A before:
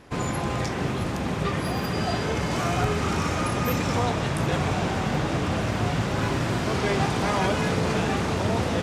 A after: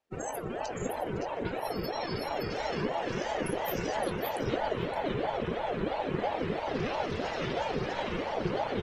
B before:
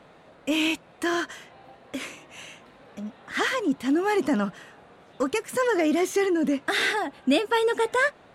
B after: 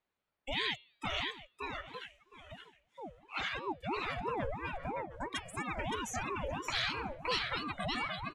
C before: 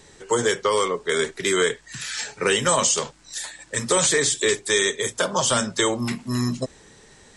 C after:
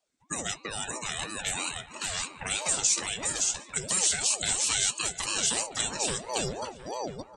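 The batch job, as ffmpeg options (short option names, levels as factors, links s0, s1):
-filter_complex "[0:a]equalizer=f=460:w=0.45:g=-11.5,asplit=2[s0][s1];[s1]aecho=0:1:568|1136|1704:0.708|0.113|0.0181[s2];[s0][s2]amix=inputs=2:normalize=0,afftdn=nr=26:nf=-34,bandreject=f=218.2:t=h:w=4,bandreject=f=436.4:t=h:w=4,bandreject=f=654.6:t=h:w=4,bandreject=f=872.8:t=h:w=4,bandreject=f=1091:t=h:w=4,bandreject=f=1309.2:t=h:w=4,bandreject=f=1527.4:t=h:w=4,bandreject=f=1745.6:t=h:w=4,bandreject=f=1963.8:t=h:w=4,bandreject=f=2182:t=h:w=4,bandreject=f=2400.2:t=h:w=4,bandreject=f=2618.4:t=h:w=4,bandreject=f=2836.6:t=h:w=4,bandreject=f=3054.8:t=h:w=4,bandreject=f=3273:t=h:w=4,bandreject=f=3491.2:t=h:w=4,bandreject=f=3709.4:t=h:w=4,bandreject=f=3927.6:t=h:w=4,bandreject=f=4145.8:t=h:w=4,bandreject=f=4364:t=h:w=4,bandreject=f=4582.2:t=h:w=4,bandreject=f=4800.4:t=h:w=4,asplit=2[s3][s4];[s4]adelay=714,lowpass=f=1500:p=1,volume=0.178,asplit=2[s5][s6];[s6]adelay=714,lowpass=f=1500:p=1,volume=0.28,asplit=2[s7][s8];[s8]adelay=714,lowpass=f=1500:p=1,volume=0.28[s9];[s5][s7][s9]amix=inputs=3:normalize=0[s10];[s3][s10]amix=inputs=2:normalize=0,acrossover=split=210|3000[s11][s12][s13];[s12]acompressor=threshold=0.0224:ratio=5[s14];[s11][s14][s13]amix=inputs=3:normalize=0,aeval=exprs='val(0)*sin(2*PI*510*n/s+510*0.5/3*sin(2*PI*3*n/s))':c=same"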